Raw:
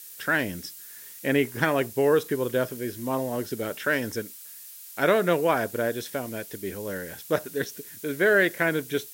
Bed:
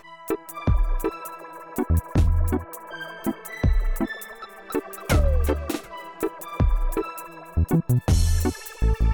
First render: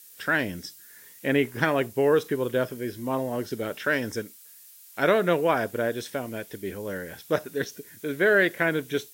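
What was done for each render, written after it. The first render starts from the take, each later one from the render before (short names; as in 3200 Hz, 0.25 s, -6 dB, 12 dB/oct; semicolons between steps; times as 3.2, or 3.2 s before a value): noise print and reduce 6 dB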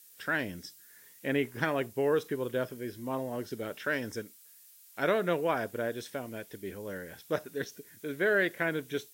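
gain -6.5 dB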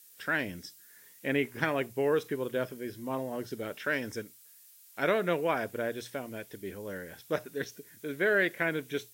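notches 60/120 Hz; dynamic EQ 2300 Hz, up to +4 dB, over -51 dBFS, Q 3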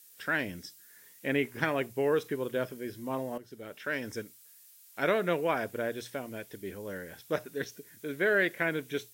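3.38–4.19 fade in, from -14.5 dB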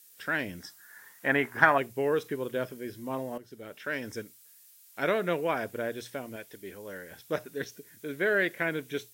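0.6–1.78 band shelf 1100 Hz +12 dB; 6.36–7.11 low shelf 310 Hz -7.5 dB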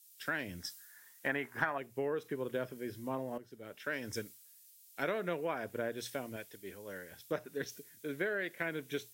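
compressor 6:1, threshold -33 dBFS, peak gain reduction 17.5 dB; three-band expander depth 70%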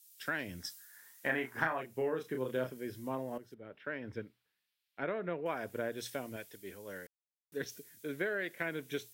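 0.9–2.7 doubler 31 ms -5 dB; 3.54–5.46 air absorption 420 m; 7.07–7.52 mute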